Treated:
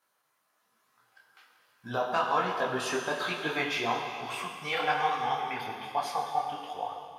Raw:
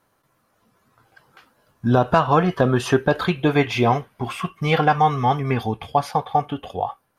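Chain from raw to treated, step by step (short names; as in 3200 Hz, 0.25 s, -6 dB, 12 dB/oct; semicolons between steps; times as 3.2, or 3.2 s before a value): HPF 1400 Hz 6 dB/oct; reverb RT60 2.4 s, pre-delay 13 ms, DRR 2.5 dB; detuned doubles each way 40 cents; gain -1.5 dB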